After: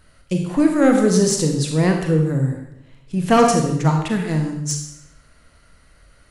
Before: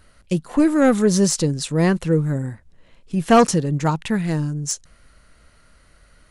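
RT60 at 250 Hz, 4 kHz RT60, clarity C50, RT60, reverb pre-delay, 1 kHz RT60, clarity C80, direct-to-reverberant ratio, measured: 0.90 s, 0.70 s, 4.5 dB, 0.80 s, 32 ms, 0.80 s, 7.0 dB, 2.5 dB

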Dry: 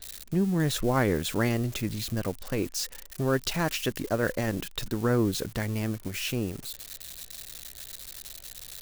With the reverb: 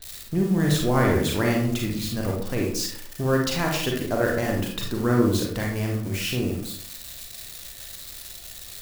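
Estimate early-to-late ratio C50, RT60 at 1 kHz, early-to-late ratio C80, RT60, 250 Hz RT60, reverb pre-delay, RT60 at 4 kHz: 3.0 dB, 0.55 s, 7.0 dB, 0.60 s, 0.70 s, 34 ms, 0.35 s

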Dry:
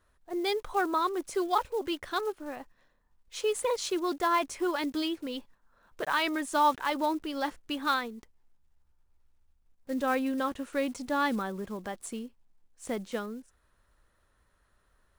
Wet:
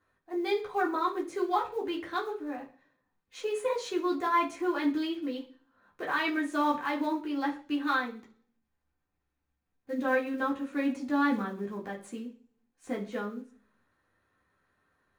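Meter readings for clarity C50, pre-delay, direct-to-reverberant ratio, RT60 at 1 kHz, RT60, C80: 11.5 dB, 3 ms, −3.5 dB, 0.35 s, 0.40 s, 17.0 dB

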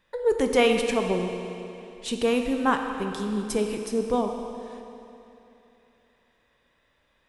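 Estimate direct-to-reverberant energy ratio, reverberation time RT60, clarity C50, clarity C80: 4.0 dB, 3.0 s, 5.0 dB, 6.0 dB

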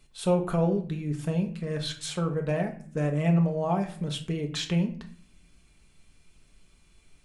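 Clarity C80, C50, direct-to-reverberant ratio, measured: 16.0 dB, 11.5 dB, 3.0 dB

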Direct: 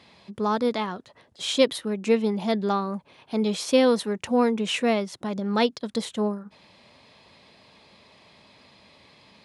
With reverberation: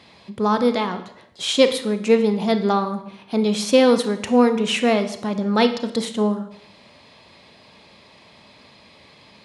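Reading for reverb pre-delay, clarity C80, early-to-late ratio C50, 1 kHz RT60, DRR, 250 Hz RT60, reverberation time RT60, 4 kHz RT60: 28 ms, 13.5 dB, 11.0 dB, 0.70 s, 8.5 dB, 0.65 s, 0.70 s, 0.65 s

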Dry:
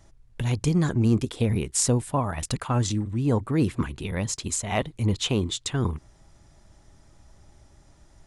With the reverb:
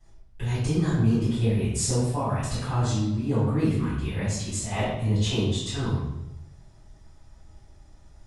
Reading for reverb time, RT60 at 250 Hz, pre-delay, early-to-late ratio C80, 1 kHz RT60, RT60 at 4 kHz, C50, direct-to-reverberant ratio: 0.90 s, 1.0 s, 3 ms, 3.0 dB, 0.80 s, 0.75 s, −0.5 dB, −15.0 dB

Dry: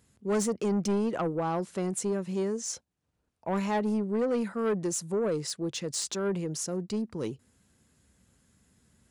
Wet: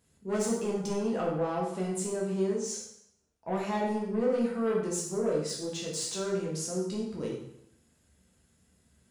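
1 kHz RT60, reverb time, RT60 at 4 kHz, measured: 0.80 s, 0.75 s, 0.70 s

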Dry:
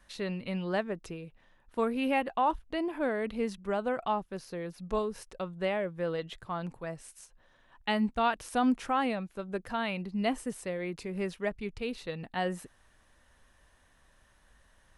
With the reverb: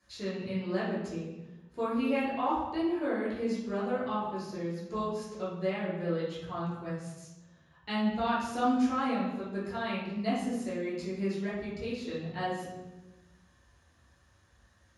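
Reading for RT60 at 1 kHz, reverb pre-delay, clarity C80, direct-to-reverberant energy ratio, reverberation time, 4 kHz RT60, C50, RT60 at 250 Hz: 0.95 s, 3 ms, 5.0 dB, −9.5 dB, 1.1 s, 0.75 s, 1.0 dB, 1.6 s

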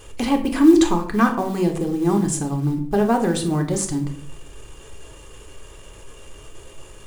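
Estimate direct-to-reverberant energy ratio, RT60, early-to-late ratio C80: 2.0 dB, 0.55 s, 14.5 dB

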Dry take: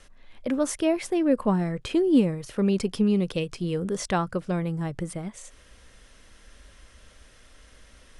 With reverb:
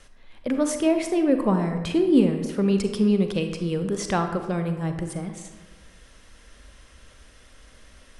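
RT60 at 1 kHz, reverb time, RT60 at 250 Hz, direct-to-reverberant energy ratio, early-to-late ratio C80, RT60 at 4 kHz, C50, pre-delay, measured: 1.2 s, 1.2 s, 1.3 s, 6.5 dB, 9.0 dB, 0.70 s, 7.0 dB, 35 ms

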